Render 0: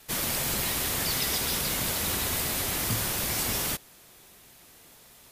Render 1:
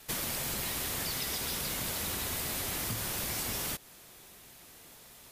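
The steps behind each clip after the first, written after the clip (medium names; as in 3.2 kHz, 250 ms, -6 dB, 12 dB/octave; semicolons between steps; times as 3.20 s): compression 5:1, threshold -32 dBFS, peak gain reduction 8.5 dB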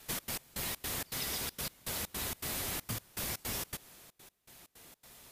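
trance gate "xx.x..xx.xx.xx" 161 bpm -24 dB; trim -2 dB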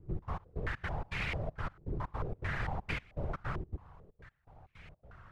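full-wave rectifier; whisper effect; step-sequenced low-pass 4.5 Hz 360–2300 Hz; trim +4 dB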